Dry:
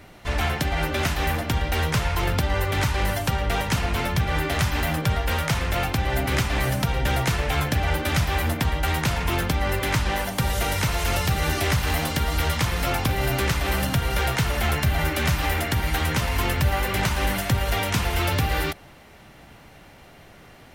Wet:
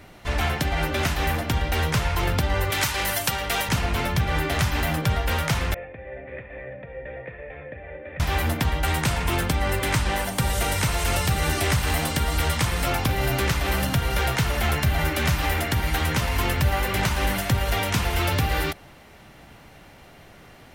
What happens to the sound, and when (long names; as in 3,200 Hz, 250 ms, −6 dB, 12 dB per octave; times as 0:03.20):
0:02.70–0:03.69: spectral tilt +2.5 dB per octave
0:05.74–0:08.20: formant resonators in series e
0:08.84–0:12.88: parametric band 8,500 Hz +6.5 dB 0.28 octaves